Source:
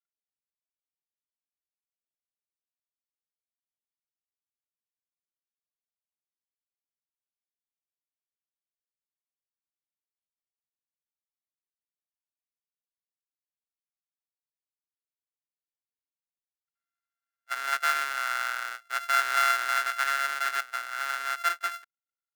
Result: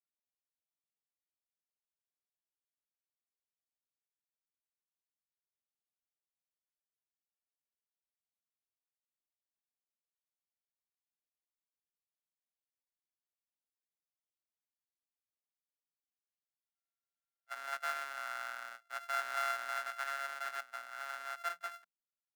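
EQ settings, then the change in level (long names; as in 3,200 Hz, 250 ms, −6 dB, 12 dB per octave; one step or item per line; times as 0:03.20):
Chebyshev high-pass with heavy ripple 170 Hz, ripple 9 dB
−5.0 dB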